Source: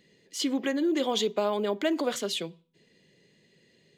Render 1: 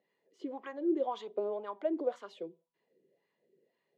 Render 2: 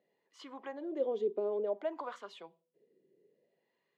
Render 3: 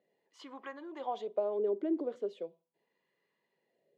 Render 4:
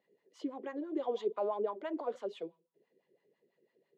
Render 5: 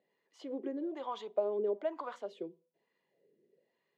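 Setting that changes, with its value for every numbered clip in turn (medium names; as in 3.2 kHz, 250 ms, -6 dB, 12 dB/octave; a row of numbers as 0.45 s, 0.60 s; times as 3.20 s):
wah-wah, rate: 1.9 Hz, 0.57 Hz, 0.39 Hz, 6 Hz, 1.1 Hz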